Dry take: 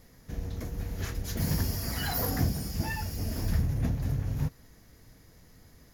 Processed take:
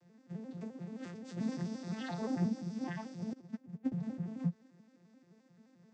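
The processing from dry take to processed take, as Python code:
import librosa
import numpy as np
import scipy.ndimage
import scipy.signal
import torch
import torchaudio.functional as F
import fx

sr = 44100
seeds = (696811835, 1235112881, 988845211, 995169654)

y = fx.vocoder_arp(x, sr, chord='major triad', root=53, every_ms=87)
y = fx.upward_expand(y, sr, threshold_db=-40.0, expansion=2.5, at=(3.33, 3.92))
y = y * librosa.db_to_amplitude(-3.5)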